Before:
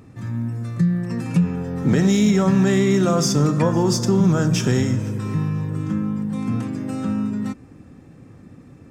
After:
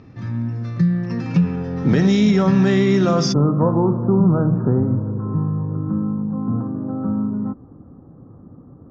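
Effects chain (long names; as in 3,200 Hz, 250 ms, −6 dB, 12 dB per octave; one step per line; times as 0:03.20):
Butterworth low-pass 5,800 Hz 48 dB per octave, from 0:03.32 1,300 Hz
level +1.5 dB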